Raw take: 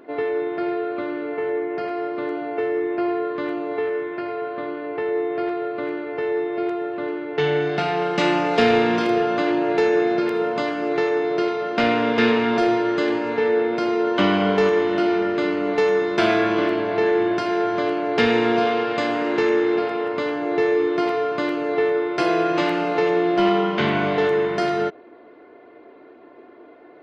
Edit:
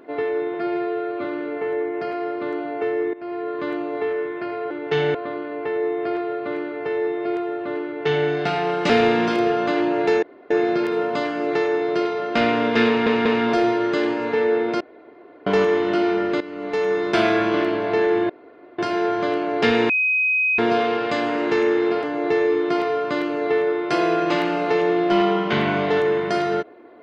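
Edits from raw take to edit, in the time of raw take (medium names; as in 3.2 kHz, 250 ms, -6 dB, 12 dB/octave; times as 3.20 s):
0.54–1.01 s: stretch 1.5×
2.90–3.39 s: fade in, from -17.5 dB
7.17–7.61 s: copy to 4.47 s
8.22–8.60 s: delete
9.93 s: insert room tone 0.28 s
12.30 s: stutter 0.19 s, 3 plays
13.85–14.51 s: room tone
15.45–16.09 s: fade in, from -15.5 dB
17.34 s: insert room tone 0.49 s
18.45 s: add tone 2.52 kHz -16.5 dBFS 0.69 s
19.90–20.31 s: delete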